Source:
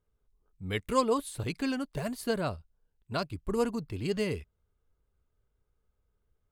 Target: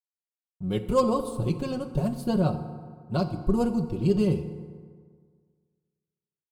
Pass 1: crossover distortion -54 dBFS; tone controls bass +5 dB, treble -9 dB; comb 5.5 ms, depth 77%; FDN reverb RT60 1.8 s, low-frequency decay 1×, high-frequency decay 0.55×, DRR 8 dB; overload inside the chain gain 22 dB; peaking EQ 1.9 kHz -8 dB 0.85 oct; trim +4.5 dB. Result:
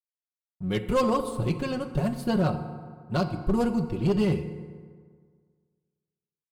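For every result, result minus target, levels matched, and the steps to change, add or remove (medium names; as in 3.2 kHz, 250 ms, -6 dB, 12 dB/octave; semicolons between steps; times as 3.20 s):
overload inside the chain: distortion +13 dB; 2 kHz band +7.5 dB
change: overload inside the chain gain 14.5 dB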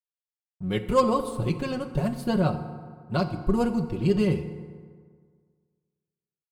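2 kHz band +6.5 dB
change: peaking EQ 1.9 kHz -20 dB 0.85 oct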